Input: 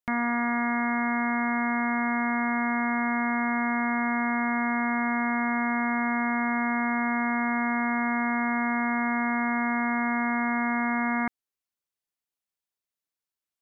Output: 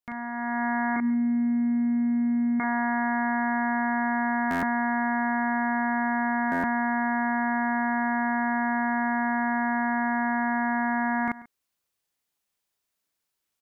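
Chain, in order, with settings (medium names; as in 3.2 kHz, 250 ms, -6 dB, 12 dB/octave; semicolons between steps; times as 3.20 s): 0.96–2.60 s: cascade formant filter i; doubling 39 ms -3.5 dB; echo from a far wall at 24 m, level -25 dB; peak limiter -25 dBFS, peak gain reduction 8.5 dB; level rider gain up to 9 dB; buffer glitch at 4.50/6.51 s, samples 512, times 10; trim -1.5 dB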